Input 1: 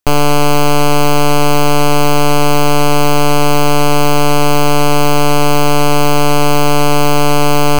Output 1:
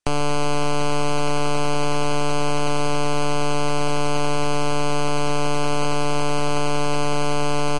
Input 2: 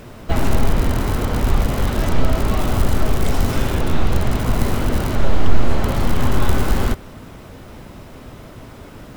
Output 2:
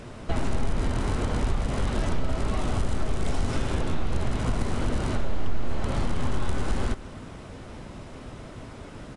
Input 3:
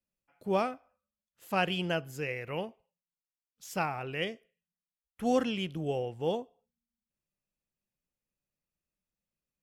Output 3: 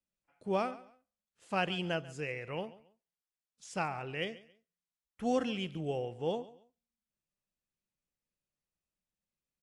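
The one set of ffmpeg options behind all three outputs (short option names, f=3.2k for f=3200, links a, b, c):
-filter_complex "[0:a]acompressor=threshold=-20dB:ratio=2.5,asplit=2[a][b];[b]aecho=0:1:139|278:0.119|0.0309[c];[a][c]amix=inputs=2:normalize=0,volume=-3dB" -ar 22050 -c:a aac -b:a 64k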